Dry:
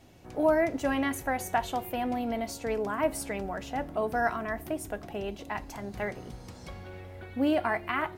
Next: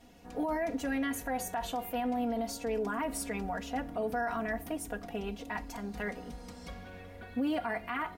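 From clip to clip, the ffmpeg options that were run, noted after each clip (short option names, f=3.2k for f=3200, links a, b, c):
-af "aecho=1:1:4.2:0.94,alimiter=limit=-21.5dB:level=0:latency=1:release=38,volume=-3.5dB"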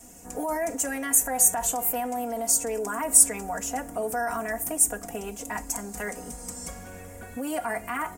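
-filter_complex "[0:a]highshelf=f=5.5k:t=q:w=3:g=13,acrossover=split=390|460|3000[a][b][c][d];[a]acompressor=threshold=-44dB:ratio=6[e];[e][b][c][d]amix=inputs=4:normalize=0,volume=5.5dB"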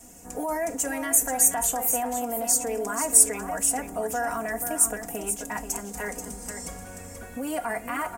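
-af "aecho=1:1:483:0.376"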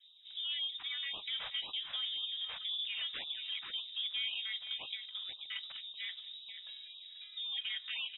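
-filter_complex "[0:a]acrossover=split=660[a][b];[b]adynamicsmooth=sensitivity=6:basefreq=1.2k[c];[a][c]amix=inputs=2:normalize=0,lowpass=f=3.3k:t=q:w=0.5098,lowpass=f=3.3k:t=q:w=0.6013,lowpass=f=3.3k:t=q:w=0.9,lowpass=f=3.3k:t=q:w=2.563,afreqshift=-3900,afftfilt=real='re*(1-between(b*sr/1024,290*pow(1800/290,0.5+0.5*sin(2*PI*1.9*pts/sr))/1.41,290*pow(1800/290,0.5+0.5*sin(2*PI*1.9*pts/sr))*1.41))':imag='im*(1-between(b*sr/1024,290*pow(1800/290,0.5+0.5*sin(2*PI*1.9*pts/sr))/1.41,290*pow(1800/290,0.5+0.5*sin(2*PI*1.9*pts/sr))*1.41))':win_size=1024:overlap=0.75,volume=-9dB"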